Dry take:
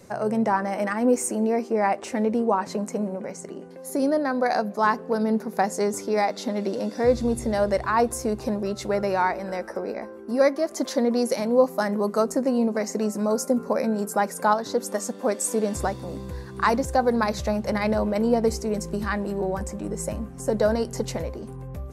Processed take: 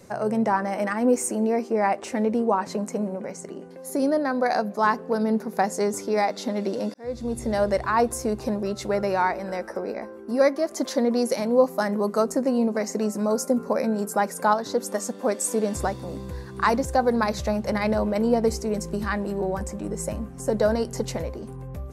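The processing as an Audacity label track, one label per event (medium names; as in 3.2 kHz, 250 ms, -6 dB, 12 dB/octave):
6.940000	7.540000	fade in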